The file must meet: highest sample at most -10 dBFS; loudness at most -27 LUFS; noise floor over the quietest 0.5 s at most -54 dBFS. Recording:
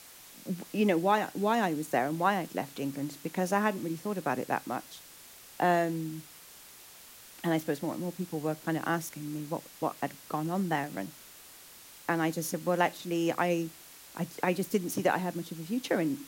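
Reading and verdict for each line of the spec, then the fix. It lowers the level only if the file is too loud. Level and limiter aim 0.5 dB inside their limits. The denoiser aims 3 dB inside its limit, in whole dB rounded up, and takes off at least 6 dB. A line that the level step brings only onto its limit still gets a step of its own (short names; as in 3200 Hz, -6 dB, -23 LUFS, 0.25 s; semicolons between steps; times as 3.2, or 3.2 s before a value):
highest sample -13.0 dBFS: OK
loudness -31.5 LUFS: OK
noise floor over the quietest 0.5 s -52 dBFS: fail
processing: denoiser 6 dB, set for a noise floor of -52 dBFS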